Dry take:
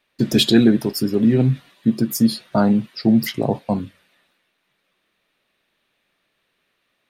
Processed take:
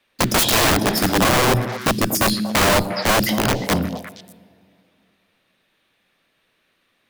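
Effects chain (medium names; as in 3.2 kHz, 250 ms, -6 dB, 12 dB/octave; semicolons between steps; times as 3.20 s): block-companded coder 7-bit; two-slope reverb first 0.77 s, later 2.7 s, from -18 dB, DRR 8.5 dB; integer overflow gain 14 dB; frequency shift -13 Hz; repeats whose band climbs or falls 118 ms, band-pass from 240 Hz, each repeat 1.4 oct, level -5 dB; trim +3 dB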